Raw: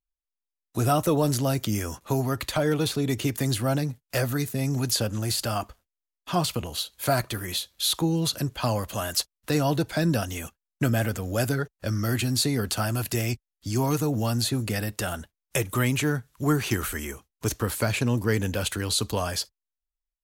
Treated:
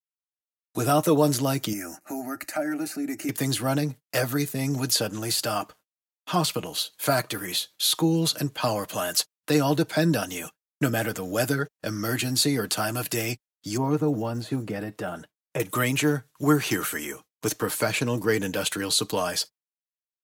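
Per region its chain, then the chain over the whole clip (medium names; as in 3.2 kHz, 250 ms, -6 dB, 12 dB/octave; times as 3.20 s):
1.73–3.29 s: compression 1.5:1, threshold -30 dBFS + static phaser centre 690 Hz, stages 8
13.77–15.60 s: de-esser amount 95% + treble shelf 3 kHz -6.5 dB
whole clip: high-pass 180 Hz 12 dB/octave; gate with hold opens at -47 dBFS; comb 6.5 ms, depth 40%; trim +1.5 dB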